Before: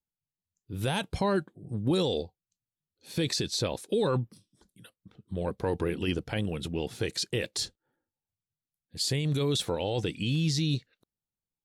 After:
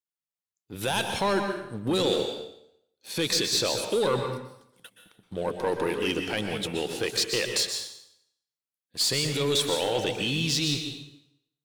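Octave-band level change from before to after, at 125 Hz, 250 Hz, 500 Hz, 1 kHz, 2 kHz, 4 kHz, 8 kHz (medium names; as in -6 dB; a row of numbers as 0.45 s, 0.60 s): -4.5 dB, 0.0 dB, +3.5 dB, +5.5 dB, +7.0 dB, +7.0 dB, +7.0 dB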